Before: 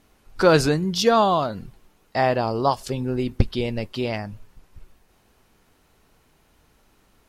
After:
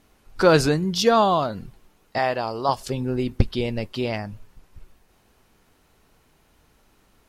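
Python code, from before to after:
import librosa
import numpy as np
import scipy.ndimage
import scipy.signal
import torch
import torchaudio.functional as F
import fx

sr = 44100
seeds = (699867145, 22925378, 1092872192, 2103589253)

y = fx.low_shelf(x, sr, hz=440.0, db=-9.5, at=(2.18, 2.69))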